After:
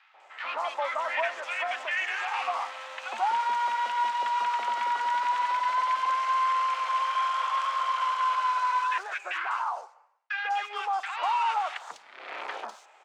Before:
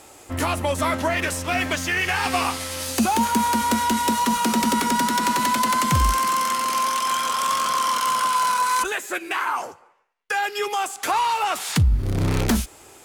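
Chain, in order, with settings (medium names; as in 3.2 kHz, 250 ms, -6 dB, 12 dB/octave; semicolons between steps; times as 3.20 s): median filter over 9 samples; high-pass 710 Hz 24 dB/octave; peak limiter -16 dBFS, peak gain reduction 6 dB; distance through air 130 m; three bands offset in time mids, lows, highs 140/200 ms, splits 1.3/4.5 kHz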